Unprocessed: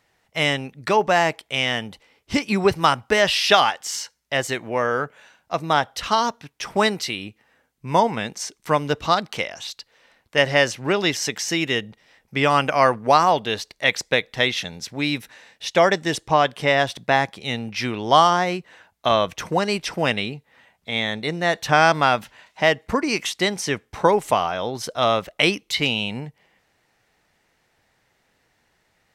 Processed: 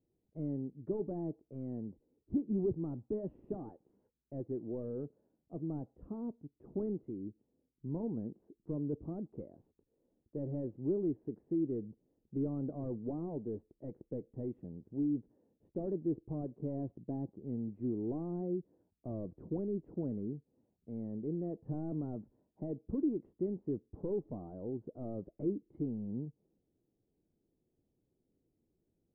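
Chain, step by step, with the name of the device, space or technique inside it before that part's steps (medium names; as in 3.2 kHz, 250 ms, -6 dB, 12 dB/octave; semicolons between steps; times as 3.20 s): overdriven synthesiser ladder filter (saturation -19.5 dBFS, distortion -7 dB; four-pole ladder low-pass 400 Hz, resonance 45%); trim -1.5 dB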